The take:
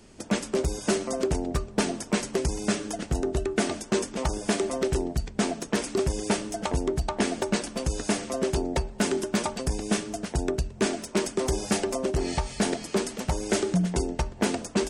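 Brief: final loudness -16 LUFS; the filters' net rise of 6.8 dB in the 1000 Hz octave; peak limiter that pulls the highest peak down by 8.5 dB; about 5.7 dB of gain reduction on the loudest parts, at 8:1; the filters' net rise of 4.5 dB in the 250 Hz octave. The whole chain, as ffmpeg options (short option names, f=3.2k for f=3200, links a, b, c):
-af "equalizer=f=250:t=o:g=5.5,equalizer=f=1k:t=o:g=8.5,acompressor=threshold=-22dB:ratio=8,volume=15dB,alimiter=limit=-4.5dB:level=0:latency=1"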